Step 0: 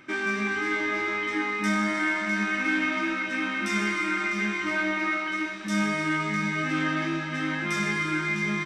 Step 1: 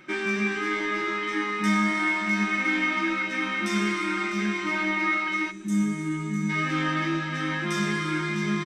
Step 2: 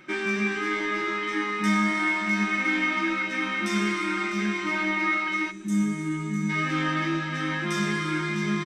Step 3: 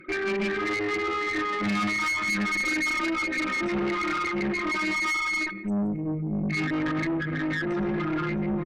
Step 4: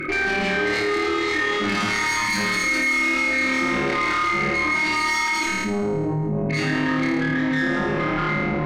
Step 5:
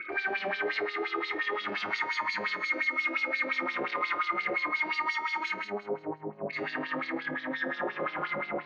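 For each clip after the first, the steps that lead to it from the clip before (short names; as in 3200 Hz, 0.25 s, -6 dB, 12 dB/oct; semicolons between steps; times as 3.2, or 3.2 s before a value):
spectral gain 5.51–6.5, 410–6000 Hz -13 dB; comb 5.5 ms, depth 59%
nothing audible
formant sharpening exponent 3; echo 0.169 s -17.5 dB; tube stage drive 28 dB, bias 0.5; gain +4.5 dB
on a send: flutter echo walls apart 4.6 m, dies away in 1.2 s; on the sum: fast leveller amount 70%; gain -3 dB
LFO band-pass sine 5.7 Hz 510–4500 Hz; air absorption 180 m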